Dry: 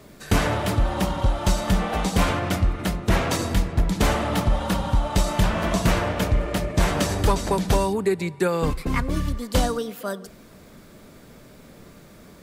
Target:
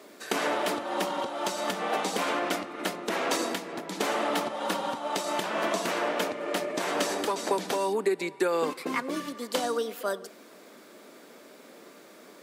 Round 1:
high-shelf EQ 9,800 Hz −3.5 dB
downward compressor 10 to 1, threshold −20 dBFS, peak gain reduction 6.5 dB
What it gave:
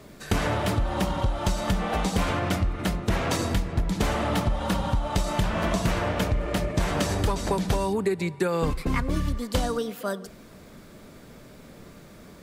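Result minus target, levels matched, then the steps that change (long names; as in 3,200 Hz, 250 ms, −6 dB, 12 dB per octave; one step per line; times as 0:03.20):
250 Hz band +3.0 dB
add after downward compressor: high-pass filter 280 Hz 24 dB per octave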